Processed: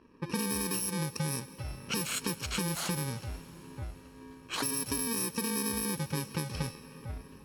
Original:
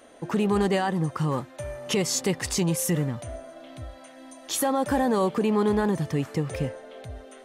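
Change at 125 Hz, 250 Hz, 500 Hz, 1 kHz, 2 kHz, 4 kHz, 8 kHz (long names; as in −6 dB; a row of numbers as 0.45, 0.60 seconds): −7.5, −10.0, −14.5, −11.0, −4.5, −2.5, −2.0 decibels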